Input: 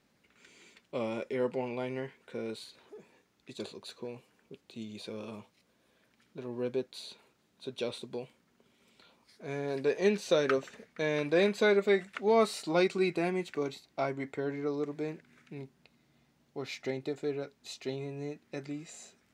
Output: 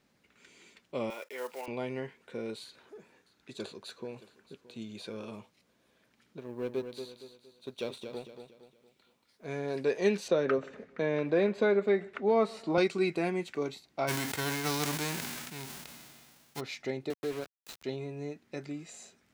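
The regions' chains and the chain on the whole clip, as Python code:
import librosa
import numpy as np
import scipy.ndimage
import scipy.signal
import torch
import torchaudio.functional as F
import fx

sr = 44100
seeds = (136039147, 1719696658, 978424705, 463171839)

y = fx.chain(x, sr, fx.block_float(bits=5),
    fx.highpass(hz=730.0, slope=12), at=(1.1, 1.68))
y = fx.chain(y, sr, fx.peak_eq(hz=1500.0, db=6.0, octaves=0.39),
    fx.echo_single(ms=622, db=-18.0), at=(2.64, 5.26))
y = fx.chain(y, sr, fx.law_mismatch(coded='A'),
    fx.echo_feedback(ms=232, feedback_pct=39, wet_db=-8.0), at=(6.39, 9.45))
y = fx.chain(y, sr, fx.lowpass(hz=1400.0, slope=6),
    fx.echo_feedback(ms=131, feedback_pct=42, wet_db=-24),
    fx.band_squash(depth_pct=40), at=(10.28, 12.78))
y = fx.envelope_flatten(y, sr, power=0.3, at=(14.07, 16.59), fade=0.02)
y = fx.sustainer(y, sr, db_per_s=26.0, at=(14.07, 16.59), fade=0.02)
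y = fx.chain(y, sr, fx.low_shelf(hz=100.0, db=-8.0),
    fx.sample_gate(floor_db=-39.5),
    fx.band_squash(depth_pct=40), at=(17.1, 17.84))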